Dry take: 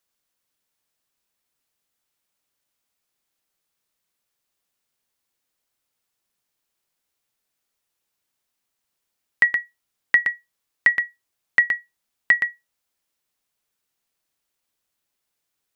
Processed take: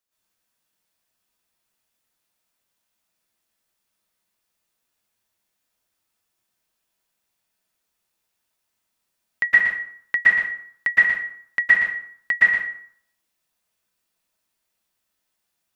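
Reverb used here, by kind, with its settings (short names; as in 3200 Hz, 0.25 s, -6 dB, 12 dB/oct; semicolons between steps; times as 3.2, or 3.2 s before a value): plate-style reverb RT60 0.6 s, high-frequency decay 0.7×, pre-delay 0.105 s, DRR -9 dB; gain -6.5 dB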